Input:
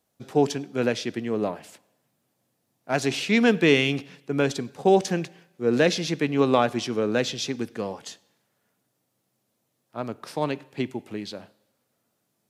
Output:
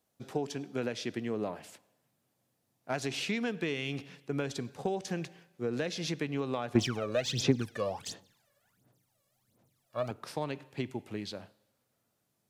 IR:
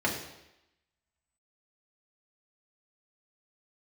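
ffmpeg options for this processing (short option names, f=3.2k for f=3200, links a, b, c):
-filter_complex "[0:a]asubboost=boost=2:cutoff=130,acompressor=threshold=-25dB:ratio=16,asettb=1/sr,asplit=3[a][b][c];[a]atrim=end=6.754[d];[b]atrim=start=6.75:end=10.11,asetpts=PTS-STARTPTS,afade=t=in:d=0.004:c=qsin,afade=t=out:st=3.356:d=0.004:c=qsin,aphaser=in_gain=1:out_gain=1:delay=1.8:decay=0.77:speed=1.4:type=sinusoidal[e];[c]atrim=start=10.106[f];[d][e]acrossfade=d=0.004:c1=hsin:c2=qsin[g];[g][f]acrossfade=d=0.004:c1=qsin:c2=hsin,volume=-4dB"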